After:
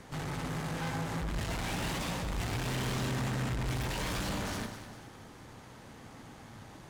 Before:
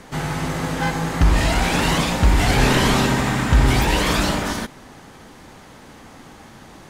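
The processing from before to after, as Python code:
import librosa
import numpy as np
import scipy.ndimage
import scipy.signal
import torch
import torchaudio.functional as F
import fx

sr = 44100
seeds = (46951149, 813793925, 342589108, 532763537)

y = fx.peak_eq(x, sr, hz=110.0, db=9.0, octaves=0.54)
y = fx.tube_stage(y, sr, drive_db=27.0, bias=0.55)
y = fx.echo_alternate(y, sr, ms=101, hz=1600.0, feedback_pct=66, wet_db=-6.5)
y = F.gain(torch.from_numpy(y), -7.0).numpy()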